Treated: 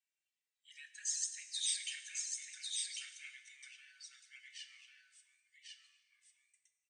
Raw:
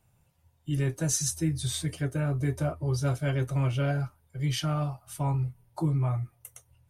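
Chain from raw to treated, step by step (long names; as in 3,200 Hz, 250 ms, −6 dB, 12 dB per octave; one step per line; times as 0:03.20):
source passing by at 0:01.92, 12 m/s, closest 2.7 metres
in parallel at 0 dB: brickwall limiter −31.5 dBFS, peak gain reduction 11 dB
on the sum: flanger swept by the level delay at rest 2.6 ms, full sweep at −27 dBFS
Chebyshev band-pass filter 1,700–8,700 Hz, order 5
on a send: single-tap delay 1,098 ms −3.5 dB
on the sum: dense smooth reverb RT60 1.4 s, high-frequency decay 0.85×, DRR 8.5 dB
level +2 dB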